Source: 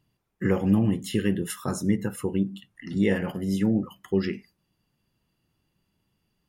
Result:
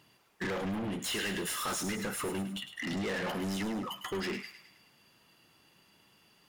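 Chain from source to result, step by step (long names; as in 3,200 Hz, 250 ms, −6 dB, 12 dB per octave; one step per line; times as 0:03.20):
0:00.99–0:01.97: tilt shelving filter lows −5.5 dB
downward compressor 5 to 1, threshold −29 dBFS, peak gain reduction 12 dB
mid-hump overdrive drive 31 dB, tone 7,100 Hz, clips at −18 dBFS
on a send: delay with a high-pass on its return 105 ms, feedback 50%, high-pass 1,500 Hz, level −9 dB
on the sum: level −9 dB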